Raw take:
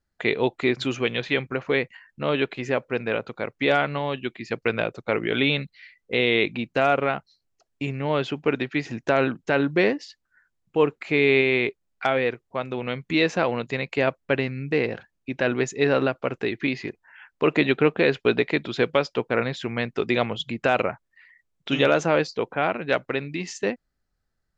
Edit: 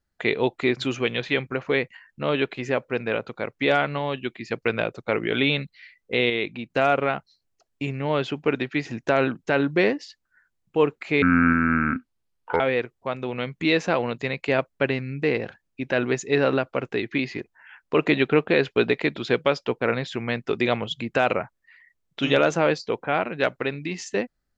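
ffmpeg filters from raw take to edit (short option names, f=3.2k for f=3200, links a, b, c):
-filter_complex "[0:a]asplit=5[a][b][c][d][e];[a]atrim=end=6.302[f];[b]atrim=start=6.298:end=6.702,asetpts=PTS-STARTPTS,volume=-5dB[g];[c]atrim=start=6.698:end=11.224[h];[d]atrim=start=11.22:end=12.09,asetpts=PTS-STARTPTS,asetrate=27783,aresample=44100[i];[e]atrim=start=12.086[j];[f][g]acrossfade=d=0.004:c1=hsin:c2=hsin[k];[k][h]acrossfade=d=0.004:c1=hsin:c2=hsin[l];[l][i]acrossfade=d=0.004:c1=hsin:c2=hsin[m];[m][j]acrossfade=d=0.004:c1=hsin:c2=hsin"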